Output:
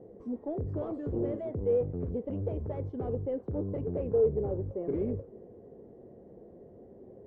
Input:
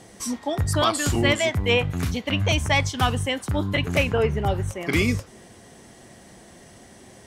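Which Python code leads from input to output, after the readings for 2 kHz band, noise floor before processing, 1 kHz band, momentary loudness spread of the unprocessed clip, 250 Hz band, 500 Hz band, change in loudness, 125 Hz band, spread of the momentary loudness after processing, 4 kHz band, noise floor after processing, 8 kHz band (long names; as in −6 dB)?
below −35 dB, −49 dBFS, −21.0 dB, 7 LU, −8.5 dB, −4.5 dB, −10.0 dB, −11.5 dB, 24 LU, below −40 dB, −53 dBFS, below −40 dB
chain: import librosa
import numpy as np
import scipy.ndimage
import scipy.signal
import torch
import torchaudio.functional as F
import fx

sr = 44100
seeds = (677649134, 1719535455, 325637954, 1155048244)

y = 10.0 ** (-24.5 / 20.0) * np.tanh(x / 10.0 ** (-24.5 / 20.0))
y = fx.lowpass_res(y, sr, hz=460.0, q=4.2)
y = y * librosa.db_to_amplitude(-7.0)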